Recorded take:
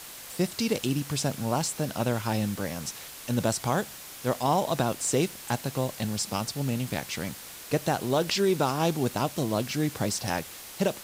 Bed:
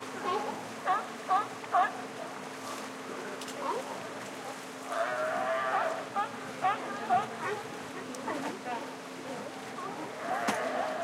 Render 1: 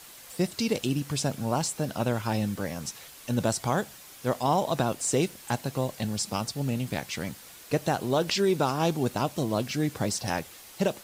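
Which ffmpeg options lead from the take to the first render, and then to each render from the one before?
ffmpeg -i in.wav -af "afftdn=noise_reduction=6:noise_floor=-44" out.wav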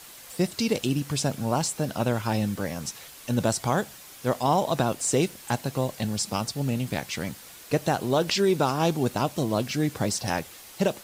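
ffmpeg -i in.wav -af "volume=2dB" out.wav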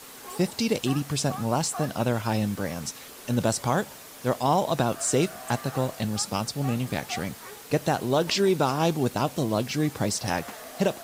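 ffmpeg -i in.wav -i bed.wav -filter_complex "[1:a]volume=-10.5dB[link_01];[0:a][link_01]amix=inputs=2:normalize=0" out.wav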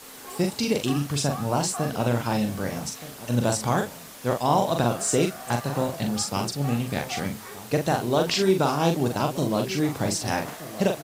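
ffmpeg -i in.wav -filter_complex "[0:a]asplit=2[link_01][link_02];[link_02]adelay=42,volume=-5dB[link_03];[link_01][link_03]amix=inputs=2:normalize=0,asplit=2[link_04][link_05];[link_05]adelay=1224,volume=-15dB,highshelf=frequency=4000:gain=-27.6[link_06];[link_04][link_06]amix=inputs=2:normalize=0" out.wav

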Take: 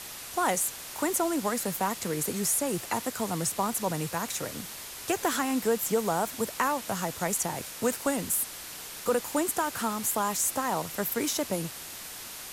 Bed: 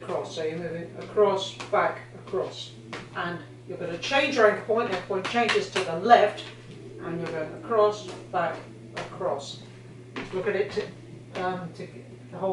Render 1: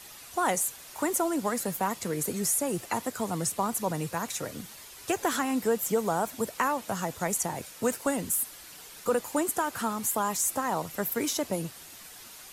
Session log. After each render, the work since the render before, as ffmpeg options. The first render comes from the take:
ffmpeg -i in.wav -af "afftdn=noise_reduction=8:noise_floor=-42" out.wav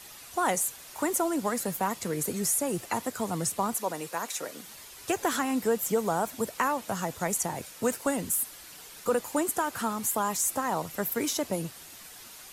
ffmpeg -i in.wav -filter_complex "[0:a]asettb=1/sr,asplit=3[link_01][link_02][link_03];[link_01]atrim=end=3.764[link_04];[link_02]atrim=start=3.76:end=4.67,asetpts=PTS-STARTPTS,afade=type=in:duration=0.004:curve=qsin,afade=type=out:start_time=0.906:duration=0.004:curve=qsin,highpass=330[link_05];[link_03]atrim=start=4.666[link_06];[link_04][link_05]acrossfade=duration=0.004:curve1=hsin:curve2=qsin[link_07];[link_07][link_06]acrossfade=duration=0.004:curve1=qsin:curve2=hsin" out.wav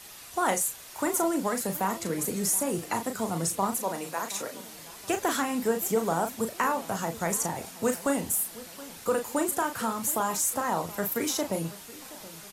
ffmpeg -i in.wav -filter_complex "[0:a]asplit=2[link_01][link_02];[link_02]adelay=36,volume=-7dB[link_03];[link_01][link_03]amix=inputs=2:normalize=0,asplit=2[link_04][link_05];[link_05]adelay=723,lowpass=frequency=2000:poles=1,volume=-18dB,asplit=2[link_06][link_07];[link_07]adelay=723,lowpass=frequency=2000:poles=1,volume=0.52,asplit=2[link_08][link_09];[link_09]adelay=723,lowpass=frequency=2000:poles=1,volume=0.52,asplit=2[link_10][link_11];[link_11]adelay=723,lowpass=frequency=2000:poles=1,volume=0.52[link_12];[link_04][link_06][link_08][link_10][link_12]amix=inputs=5:normalize=0" out.wav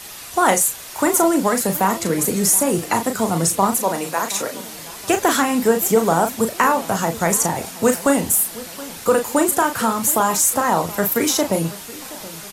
ffmpeg -i in.wav -af "volume=10.5dB" out.wav

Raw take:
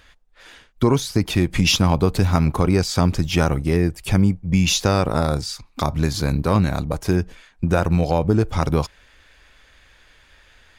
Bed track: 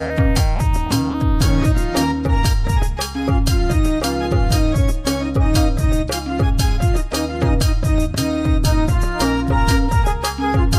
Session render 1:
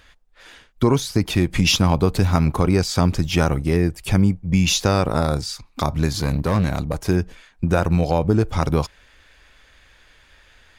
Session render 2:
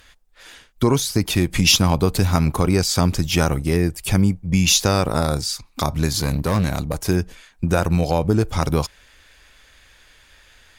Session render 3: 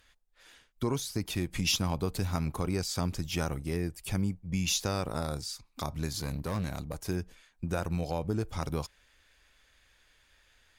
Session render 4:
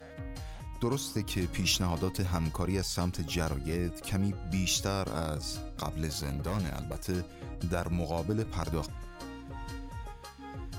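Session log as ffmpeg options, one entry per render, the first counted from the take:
ffmpeg -i in.wav -filter_complex "[0:a]asettb=1/sr,asplit=3[link_01][link_02][link_03];[link_01]atrim=end=6.194[link_04];[link_02]atrim=start=6.19:end=7.06,asetpts=PTS-STARTPTS,afade=type=in:duration=0.004:curve=qsin,afade=type=out:start_time=0.866:duration=0.004:curve=qsin,volume=13.5dB,asoftclip=hard,volume=-13.5dB[link_05];[link_03]atrim=start=7.056[link_06];[link_04][link_05]acrossfade=duration=0.004:curve1=hsin:curve2=qsin[link_07];[link_07][link_06]acrossfade=duration=0.004:curve1=qsin:curve2=hsin" out.wav
ffmpeg -i in.wav -af "aemphasis=mode=production:type=cd" out.wav
ffmpeg -i in.wav -af "volume=-13.5dB" out.wav
ffmpeg -i in.wav -i bed.wav -filter_complex "[1:a]volume=-26dB[link_01];[0:a][link_01]amix=inputs=2:normalize=0" out.wav

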